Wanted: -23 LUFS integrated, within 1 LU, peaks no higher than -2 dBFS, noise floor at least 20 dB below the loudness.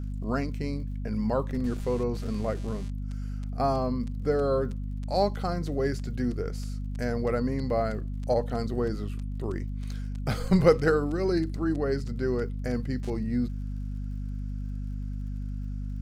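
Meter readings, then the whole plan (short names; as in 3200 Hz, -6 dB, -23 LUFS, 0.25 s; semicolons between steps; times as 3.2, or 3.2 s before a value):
ticks 51/s; hum 50 Hz; harmonics up to 250 Hz; hum level -30 dBFS; loudness -29.5 LUFS; peak -7.5 dBFS; loudness target -23.0 LUFS
-> de-click; de-hum 50 Hz, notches 5; gain +6.5 dB; limiter -2 dBFS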